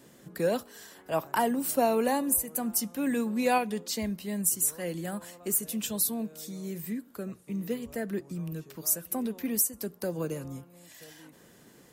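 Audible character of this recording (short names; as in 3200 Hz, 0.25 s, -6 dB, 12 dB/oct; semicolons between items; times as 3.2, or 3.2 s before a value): noise floor -57 dBFS; spectral tilt -3.5 dB/oct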